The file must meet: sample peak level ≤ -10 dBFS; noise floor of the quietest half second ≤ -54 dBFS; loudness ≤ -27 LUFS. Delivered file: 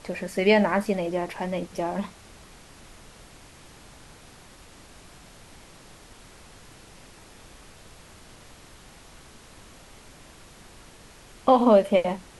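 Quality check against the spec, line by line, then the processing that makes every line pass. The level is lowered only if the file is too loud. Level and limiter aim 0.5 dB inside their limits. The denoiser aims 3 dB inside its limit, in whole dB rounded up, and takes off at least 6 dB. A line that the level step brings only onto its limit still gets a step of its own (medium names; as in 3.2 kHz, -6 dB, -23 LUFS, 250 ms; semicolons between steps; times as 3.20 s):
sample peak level -6.0 dBFS: fail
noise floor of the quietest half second -49 dBFS: fail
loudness -23.5 LUFS: fail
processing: noise reduction 6 dB, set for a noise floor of -49 dBFS; trim -4 dB; peak limiter -10.5 dBFS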